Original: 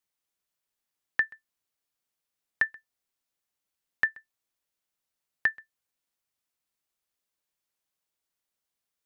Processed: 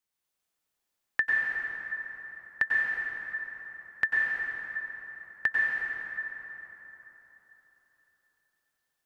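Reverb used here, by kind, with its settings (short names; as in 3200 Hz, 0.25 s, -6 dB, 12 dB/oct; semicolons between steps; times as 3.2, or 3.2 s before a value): plate-style reverb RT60 4 s, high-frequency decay 0.55×, pre-delay 85 ms, DRR -4.5 dB; gain -1.5 dB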